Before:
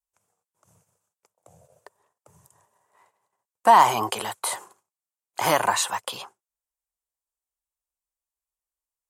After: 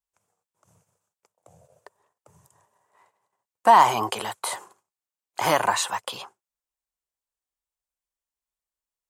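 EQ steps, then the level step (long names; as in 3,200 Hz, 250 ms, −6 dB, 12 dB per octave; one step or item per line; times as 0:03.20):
parametric band 12,000 Hz −4.5 dB 1.1 octaves
0.0 dB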